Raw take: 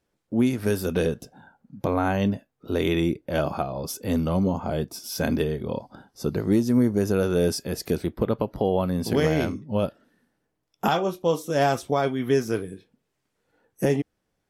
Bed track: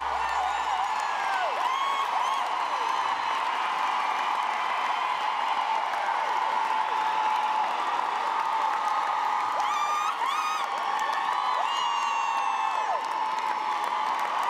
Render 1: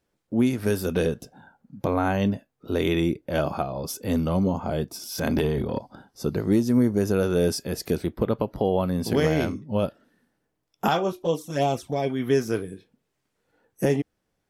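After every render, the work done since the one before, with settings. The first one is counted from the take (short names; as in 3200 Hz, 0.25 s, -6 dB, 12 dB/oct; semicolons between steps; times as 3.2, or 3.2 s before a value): 4.97–5.78 transient shaper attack -4 dB, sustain +11 dB; 11.12–12.1 envelope flanger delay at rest 3.7 ms, full sweep at -17.5 dBFS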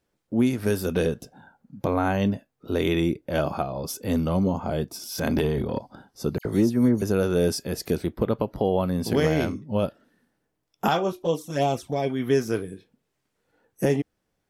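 6.38–7.02 dispersion lows, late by 71 ms, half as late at 2700 Hz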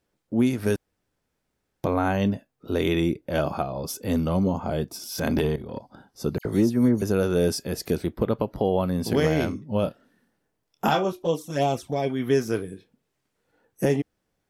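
0.76–1.83 room tone; 5.56–6.37 fade in equal-power, from -13.5 dB; 9.82–11.05 doubler 27 ms -8 dB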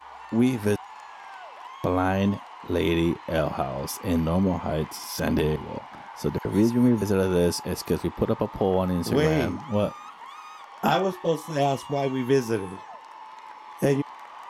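add bed track -15 dB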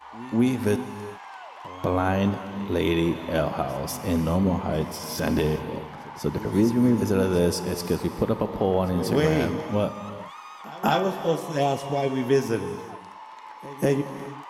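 pre-echo 0.194 s -19.5 dB; non-linear reverb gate 0.44 s flat, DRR 10 dB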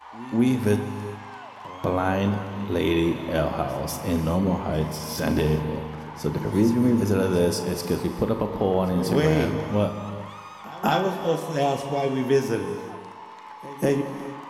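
flutter echo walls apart 6.6 m, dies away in 0.2 s; spring tank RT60 1.9 s, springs 39/59 ms, chirp 60 ms, DRR 12 dB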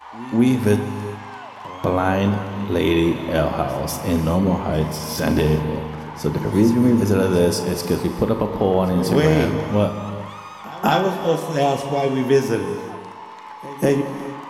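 gain +4.5 dB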